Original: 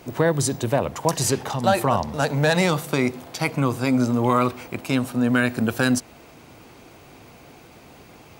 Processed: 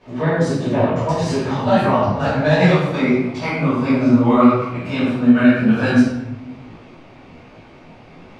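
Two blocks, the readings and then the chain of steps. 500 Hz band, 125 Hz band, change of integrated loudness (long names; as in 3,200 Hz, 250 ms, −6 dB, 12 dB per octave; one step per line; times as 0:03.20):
+5.0 dB, +5.0 dB, +5.5 dB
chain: low-pass filter 3,700 Hz 12 dB per octave
rectangular room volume 350 cubic metres, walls mixed, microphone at 5.7 metres
micro pitch shift up and down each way 41 cents
level −6 dB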